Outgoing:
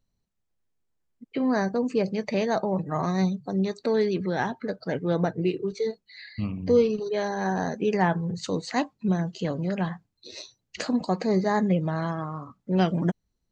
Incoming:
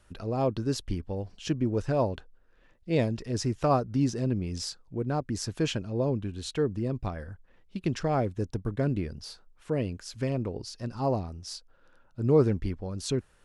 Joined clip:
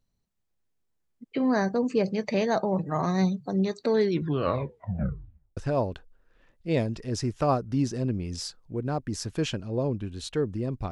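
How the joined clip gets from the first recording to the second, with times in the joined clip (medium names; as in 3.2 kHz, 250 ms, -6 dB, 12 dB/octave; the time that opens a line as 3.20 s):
outgoing
4.01 s: tape stop 1.56 s
5.57 s: go over to incoming from 1.79 s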